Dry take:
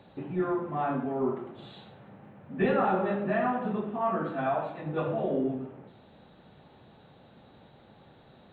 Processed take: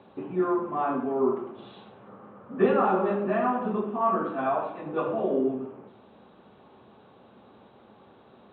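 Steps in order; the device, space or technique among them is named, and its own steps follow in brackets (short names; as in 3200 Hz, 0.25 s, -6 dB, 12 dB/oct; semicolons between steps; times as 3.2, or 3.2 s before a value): 2.07–2.67 thirty-one-band EQ 500 Hz +6 dB, 1250 Hz +10 dB, 2500 Hz -5 dB; guitar cabinet (speaker cabinet 82–3500 Hz, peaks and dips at 94 Hz -5 dB, 150 Hz -10 dB, 220 Hz +3 dB, 400 Hz +5 dB, 1100 Hz +7 dB, 1900 Hz -5 dB); gain +1 dB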